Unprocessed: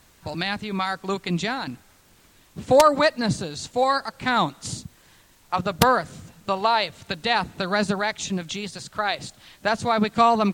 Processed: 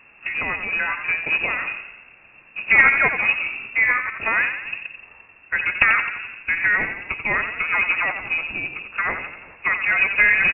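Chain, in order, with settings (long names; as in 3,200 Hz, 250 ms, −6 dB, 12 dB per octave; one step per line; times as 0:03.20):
parametric band 1,800 Hz −3 dB 1.7 octaves
in parallel at 0 dB: downward compressor 6 to 1, threshold −36 dBFS, peak gain reduction 22.5 dB
on the sum: log-companded quantiser 4 bits
phase-vocoder pitch shift with formants kept −2 semitones
on a send: echo with shifted repeats 86 ms, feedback 56%, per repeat −36 Hz, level −8.5 dB
on the sum: voice inversion scrambler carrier 2,700 Hz
level +1 dB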